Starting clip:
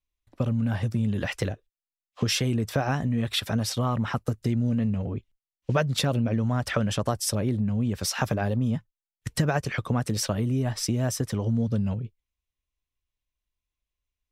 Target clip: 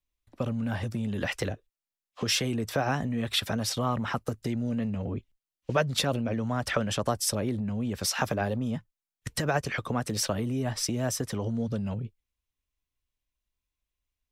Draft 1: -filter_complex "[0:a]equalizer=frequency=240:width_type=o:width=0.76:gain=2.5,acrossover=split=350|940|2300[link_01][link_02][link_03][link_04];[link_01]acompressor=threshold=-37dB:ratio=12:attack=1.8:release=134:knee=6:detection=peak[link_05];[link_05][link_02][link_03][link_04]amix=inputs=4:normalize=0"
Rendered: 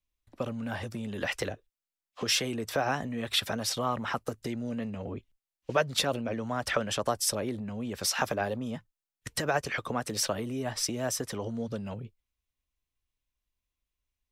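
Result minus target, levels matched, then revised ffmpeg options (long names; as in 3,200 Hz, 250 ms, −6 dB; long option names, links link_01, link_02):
downward compressor: peak gain reduction +8.5 dB
-filter_complex "[0:a]equalizer=frequency=240:width_type=o:width=0.76:gain=2.5,acrossover=split=350|940|2300[link_01][link_02][link_03][link_04];[link_01]acompressor=threshold=-28dB:ratio=12:attack=1.8:release=134:knee=6:detection=peak[link_05];[link_05][link_02][link_03][link_04]amix=inputs=4:normalize=0"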